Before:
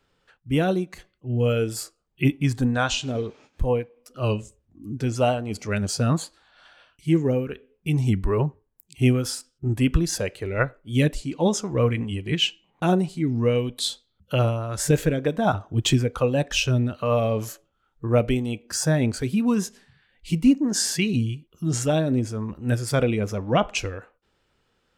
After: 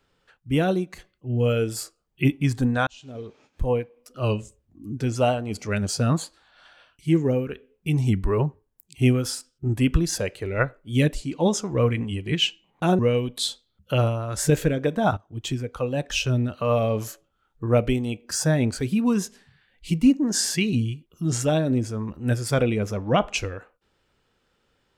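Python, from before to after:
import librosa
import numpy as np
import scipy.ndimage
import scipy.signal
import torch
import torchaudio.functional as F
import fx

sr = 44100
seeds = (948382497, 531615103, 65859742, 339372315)

y = fx.edit(x, sr, fx.fade_in_span(start_s=2.87, length_s=0.9),
    fx.cut(start_s=12.99, length_s=0.41),
    fx.fade_in_from(start_s=15.58, length_s=1.39, floor_db=-15.0), tone=tone)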